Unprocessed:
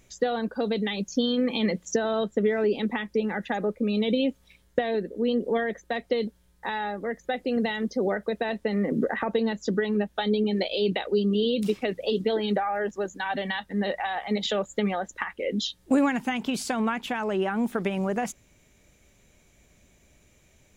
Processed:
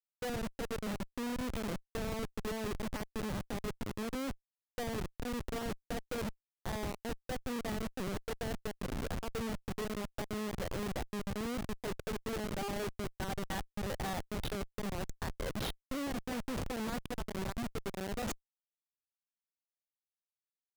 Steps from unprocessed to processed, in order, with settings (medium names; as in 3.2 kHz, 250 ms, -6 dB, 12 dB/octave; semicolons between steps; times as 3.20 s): reverse; compression 5:1, threshold -40 dBFS, peak gain reduction 20 dB; reverse; Schmitt trigger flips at -38 dBFS; trim +6 dB